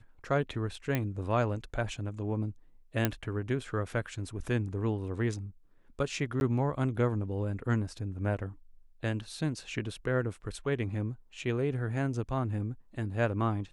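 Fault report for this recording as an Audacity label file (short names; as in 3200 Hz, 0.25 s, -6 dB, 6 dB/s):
0.950000	0.950000	pop -16 dBFS
3.050000	3.050000	pop -11 dBFS
6.400000	6.410000	gap 11 ms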